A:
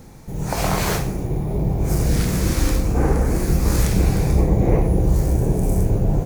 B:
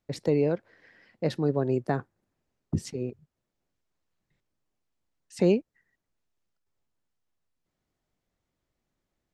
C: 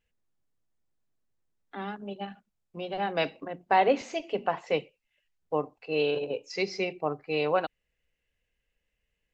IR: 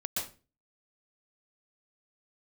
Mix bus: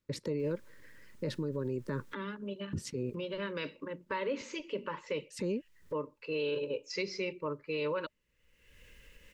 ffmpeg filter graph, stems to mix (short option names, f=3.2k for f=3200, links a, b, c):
-filter_complex "[1:a]volume=-2dB[a];[2:a]acompressor=mode=upward:threshold=-31dB:ratio=2.5,adelay=400,volume=-3dB[b];[a][b]amix=inputs=2:normalize=0,acompressor=threshold=-25dB:ratio=6,volume=0dB,asuperstop=centerf=730:order=12:qfactor=2.8,alimiter=level_in=2dB:limit=-24dB:level=0:latency=1:release=31,volume=-2dB"